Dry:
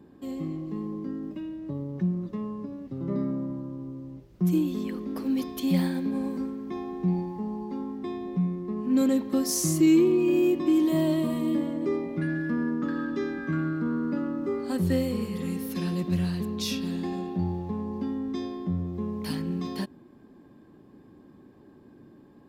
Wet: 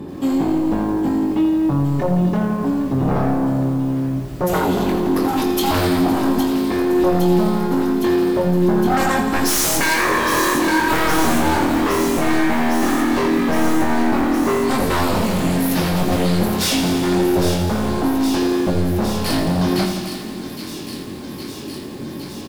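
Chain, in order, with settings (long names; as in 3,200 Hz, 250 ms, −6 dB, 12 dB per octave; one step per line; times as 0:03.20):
notch filter 1,600 Hz
in parallel at +2 dB: downward compressor, threshold −38 dBFS, peak gain reduction 19.5 dB
on the sum: sine wavefolder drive 15 dB, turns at −11 dBFS
double-tracking delay 22 ms −5 dB
delay with a high-pass on its return 812 ms, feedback 79%, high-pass 2,300 Hz, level −8 dB
on a send at −13.5 dB: convolution reverb RT60 0.30 s, pre-delay 32 ms
on the sum: feedback echo at a low word length 84 ms, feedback 80%, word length 6 bits, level −10 dB
level −5.5 dB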